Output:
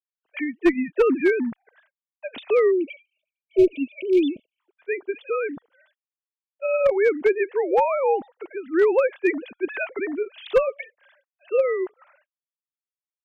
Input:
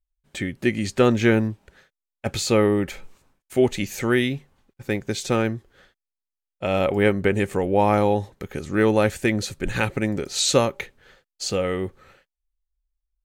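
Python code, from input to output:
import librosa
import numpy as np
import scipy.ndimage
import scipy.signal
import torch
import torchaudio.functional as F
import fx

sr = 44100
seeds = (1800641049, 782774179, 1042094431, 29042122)

y = fx.sine_speech(x, sr)
y = fx.clip_asym(y, sr, top_db=-12.0, bottom_db=-8.5)
y = fx.spec_erase(y, sr, start_s=2.71, length_s=1.88, low_hz=660.0, high_hz=2200.0)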